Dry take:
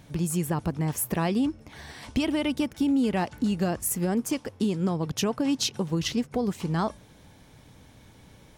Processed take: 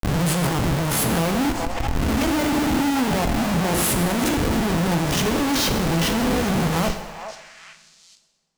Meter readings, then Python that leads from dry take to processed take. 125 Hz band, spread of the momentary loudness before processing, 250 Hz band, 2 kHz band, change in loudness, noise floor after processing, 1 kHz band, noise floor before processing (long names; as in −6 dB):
+7.5 dB, 4 LU, +4.5 dB, +12.0 dB, +6.5 dB, −55 dBFS, +10.0 dB, −54 dBFS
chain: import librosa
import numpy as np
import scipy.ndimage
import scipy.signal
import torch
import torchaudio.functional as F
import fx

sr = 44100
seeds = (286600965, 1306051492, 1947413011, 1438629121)

y = fx.spec_swells(x, sr, rise_s=0.64)
y = fx.peak_eq(y, sr, hz=73.0, db=3.0, octaves=2.2)
y = fx.hum_notches(y, sr, base_hz=50, count=9)
y = fx.rider(y, sr, range_db=4, speed_s=2.0)
y = fx.schmitt(y, sr, flips_db=-30.0)
y = fx.echo_stepped(y, sr, ms=423, hz=810.0, octaves=1.4, feedback_pct=70, wet_db=-8.0)
y = fx.rev_double_slope(y, sr, seeds[0], early_s=0.98, late_s=2.9, knee_db=-25, drr_db=6.0)
y = fx.pre_swell(y, sr, db_per_s=38.0)
y = y * librosa.db_to_amplitude(4.5)